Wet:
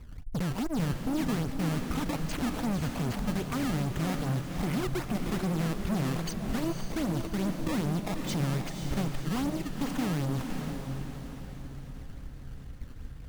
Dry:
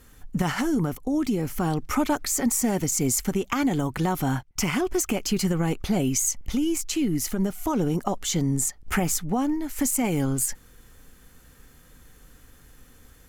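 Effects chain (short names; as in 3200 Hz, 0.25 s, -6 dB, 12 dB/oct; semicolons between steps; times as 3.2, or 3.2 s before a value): tone controls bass +14 dB, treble -6 dB; notch 7400 Hz, Q 5; in parallel at +1.5 dB: compressor, threshold -28 dBFS, peak gain reduction 17.5 dB; on the sum: decimation with a swept rate 17×, swing 160% 2.5 Hz; tube stage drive 21 dB, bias 0.7; on a send: diffused feedback echo 0.525 s, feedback 49%, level -5 dB; on the sum: gain -7 dB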